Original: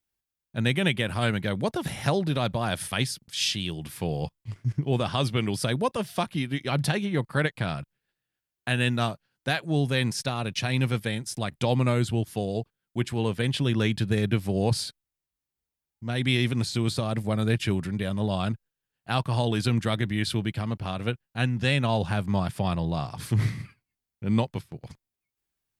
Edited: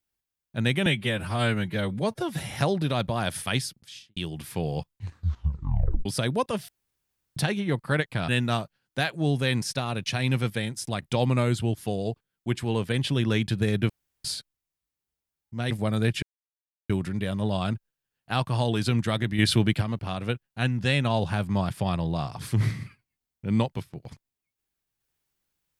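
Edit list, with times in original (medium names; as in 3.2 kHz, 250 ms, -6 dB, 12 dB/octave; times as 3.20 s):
0.86–1.95 s: stretch 1.5×
3.09–3.62 s: studio fade out
4.38 s: tape stop 1.13 s
6.14–6.82 s: room tone
7.74–8.78 s: delete
14.39–14.74 s: room tone
16.20–17.16 s: delete
17.68 s: insert silence 0.67 s
20.17–20.60 s: gain +6 dB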